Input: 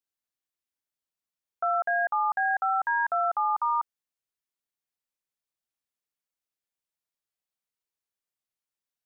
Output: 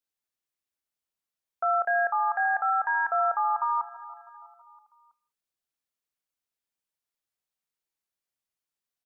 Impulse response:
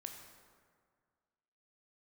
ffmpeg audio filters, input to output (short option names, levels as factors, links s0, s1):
-filter_complex "[0:a]aecho=1:1:325|650|975|1300:0.126|0.0655|0.034|0.0177,asplit=2[s0][s1];[1:a]atrim=start_sample=2205,afade=t=out:st=0.23:d=0.01,atrim=end_sample=10584,adelay=27[s2];[s1][s2]afir=irnorm=-1:irlink=0,volume=0.355[s3];[s0][s3]amix=inputs=2:normalize=0"